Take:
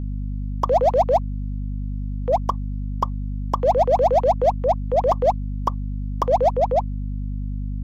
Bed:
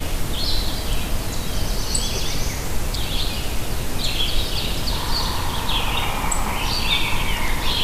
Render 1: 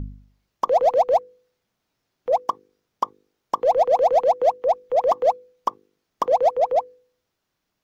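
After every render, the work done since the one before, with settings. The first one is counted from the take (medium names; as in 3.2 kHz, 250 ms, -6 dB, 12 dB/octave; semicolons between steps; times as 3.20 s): de-hum 50 Hz, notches 10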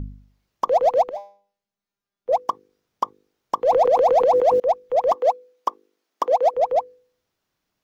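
1.09–2.29 s: feedback comb 200 Hz, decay 0.42 s, mix 90%; 3.63–4.60 s: decay stretcher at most 34 dB/s; 5.15–6.54 s: high-pass 260 Hz 24 dB/octave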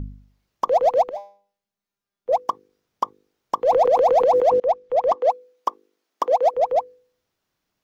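4.49–5.30 s: distance through air 68 m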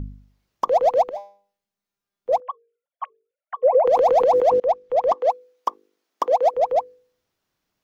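2.40–3.87 s: formants replaced by sine waves; 5.14–5.68 s: high-pass 300 Hz 6 dB/octave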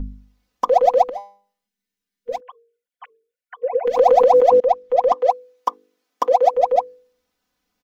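1.68–3.96 s: time-frequency box 490–1400 Hz -11 dB; comb 4 ms, depth 94%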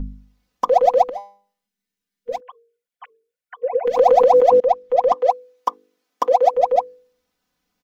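peaking EQ 160 Hz +5.5 dB 0.35 oct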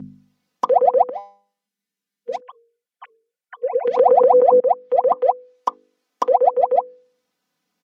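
high-pass 120 Hz 24 dB/octave; low-pass that closes with the level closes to 1.4 kHz, closed at -12 dBFS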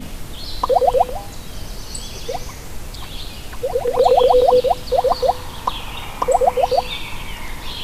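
add bed -7.5 dB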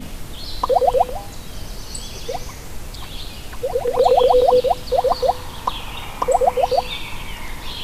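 trim -1 dB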